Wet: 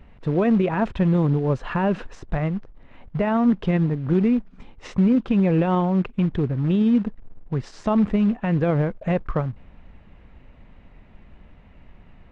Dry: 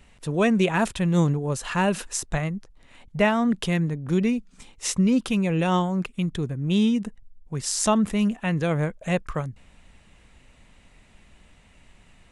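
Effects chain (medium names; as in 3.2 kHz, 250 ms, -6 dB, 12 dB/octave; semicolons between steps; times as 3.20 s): dynamic bell 160 Hz, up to -3 dB, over -32 dBFS, Q 2.7; short-mantissa float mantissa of 2-bit; peak limiter -17.5 dBFS, peak gain reduction 9 dB; tape spacing loss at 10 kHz 44 dB; trim +7.5 dB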